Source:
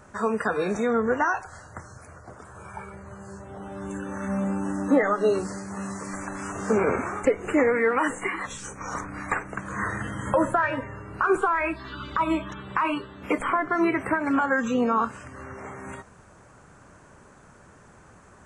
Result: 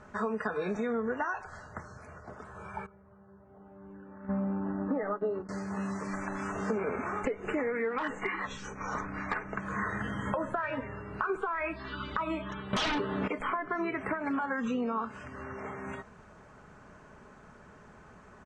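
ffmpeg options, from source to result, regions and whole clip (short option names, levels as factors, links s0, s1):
-filter_complex "[0:a]asettb=1/sr,asplit=3[s0][s1][s2];[s0]atrim=end=2.864[s3];[s1]atrim=start=2.86:end=5.49,asetpts=PTS-STARTPTS,afade=t=in:d=0.004:c=qsin,afade=t=out:st=2.626:d=0.004:c=qsin,lowpass=1400,agate=range=0.2:threshold=0.0316:ratio=16:release=100:detection=peak[s4];[s2]atrim=start=5.486[s5];[s3][s4]acrossfade=d=0.004:c1=hsin:c2=qsin[s6];[s6][s5]acrossfade=d=0.004:c1=qsin:c2=hsin,asettb=1/sr,asplit=3[s7][s8][s9];[s7]atrim=end=7.984[s10];[s8]atrim=start=7.98:end=9.6,asetpts=PTS-STARTPTS,afade=t=in:d=0.004:c=qsin,afade=t=out:st=1.616:d=0.004:c=qsin,lowpass=f=7100:w=0.5412,lowpass=f=7100:w=1.3066,volume=7.94,asoftclip=hard,volume=0.126[s11];[s9]atrim=start=9.596[s12];[s10][s11]acrossfade=d=0.004:c1=hsin:c2=qsin[s13];[s13][s12]acrossfade=d=0.004:c1=qsin:c2=hsin,asettb=1/sr,asplit=3[s14][s15][s16];[s14]atrim=end=12.734[s17];[s15]atrim=start=12.73:end=13.28,asetpts=PTS-STARTPTS,afade=t=in:d=0.004:c=qsin,afade=t=out:st=0.546:d=0.004:c=qsin,highpass=120,highshelf=f=2500:g=-9,aeval=exprs='0.237*sin(PI/2*7.08*val(0)/0.237)':c=same[s18];[s16]atrim=start=13.276[s19];[s17][s18]acrossfade=d=0.004:c1=hsin:c2=qsin[s20];[s20][s19]acrossfade=d=0.004:c1=qsin:c2=hsin,lowpass=4500,aecho=1:1:4.7:0.32,acompressor=threshold=0.0447:ratio=6,volume=0.794"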